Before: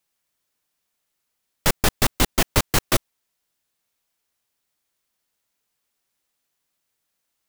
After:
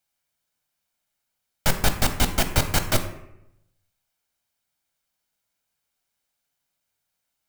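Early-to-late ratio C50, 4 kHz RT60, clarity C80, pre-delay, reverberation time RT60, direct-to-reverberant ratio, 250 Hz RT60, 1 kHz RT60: 9.5 dB, 0.55 s, 12.0 dB, 13 ms, 0.80 s, 7.0 dB, 0.90 s, 0.80 s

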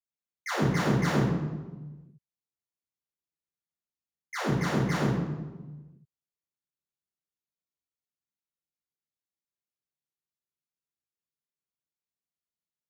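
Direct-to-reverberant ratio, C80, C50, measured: -11.5 dB, 2.5 dB, -0.5 dB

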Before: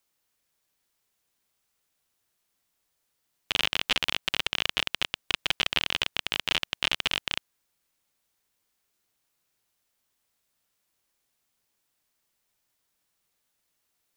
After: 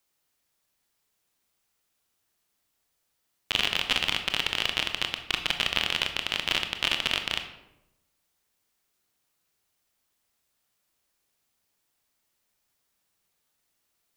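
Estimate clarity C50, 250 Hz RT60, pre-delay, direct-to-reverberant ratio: 9.0 dB, 1.1 s, 21 ms, 6.0 dB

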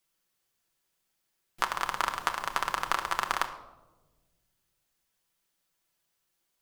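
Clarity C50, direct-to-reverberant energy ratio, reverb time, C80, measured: 11.5 dB, 4.0 dB, 1.2 s, 13.5 dB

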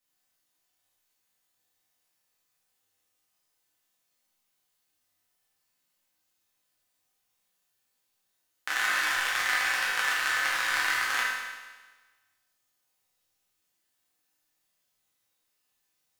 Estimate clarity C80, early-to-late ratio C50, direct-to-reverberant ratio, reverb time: 2.0 dB, -0.5 dB, -7.5 dB, 1.3 s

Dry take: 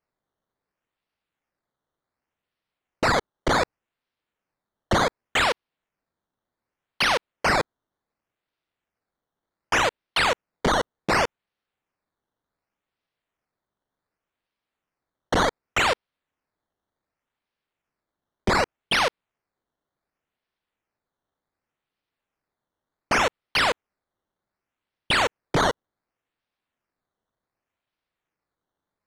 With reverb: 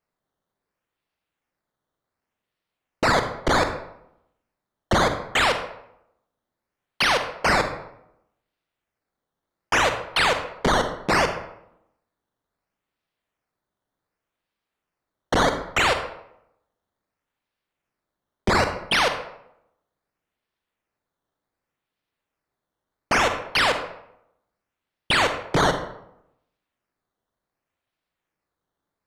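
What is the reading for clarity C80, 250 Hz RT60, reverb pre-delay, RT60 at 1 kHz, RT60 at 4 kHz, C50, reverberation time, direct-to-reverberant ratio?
11.0 dB, 0.85 s, 36 ms, 0.75 s, 0.50 s, 8.0 dB, 0.75 s, 7.0 dB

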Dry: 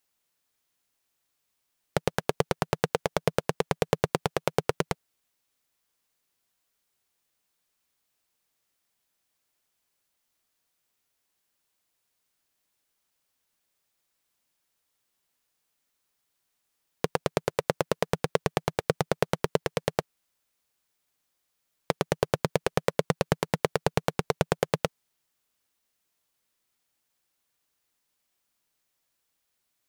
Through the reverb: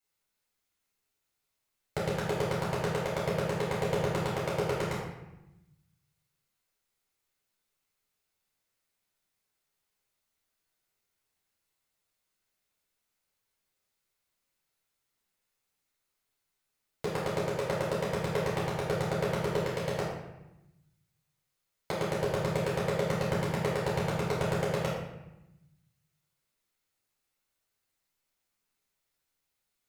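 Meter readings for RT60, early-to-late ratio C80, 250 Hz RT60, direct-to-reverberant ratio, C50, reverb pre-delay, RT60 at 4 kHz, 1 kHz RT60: 0.95 s, 4.0 dB, 1.3 s, -7.5 dB, 1.0 dB, 3 ms, 0.70 s, 0.95 s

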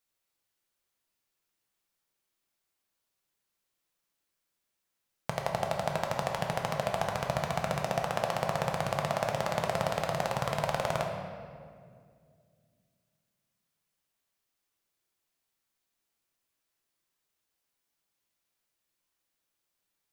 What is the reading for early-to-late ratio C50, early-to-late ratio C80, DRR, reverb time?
3.5 dB, 5.0 dB, 1.0 dB, 2.2 s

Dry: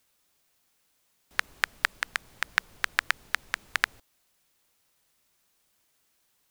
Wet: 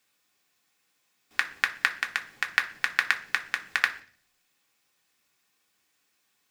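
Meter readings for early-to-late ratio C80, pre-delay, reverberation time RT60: 19.5 dB, 3 ms, 0.45 s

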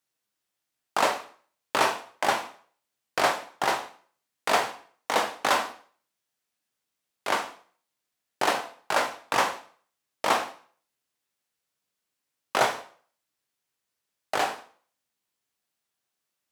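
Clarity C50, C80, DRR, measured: 11.5 dB, 16.5 dB, 5.0 dB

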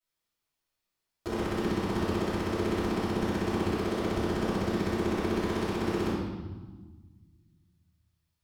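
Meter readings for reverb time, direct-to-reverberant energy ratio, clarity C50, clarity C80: 1.4 s, -15.5 dB, -2.0 dB, 1.0 dB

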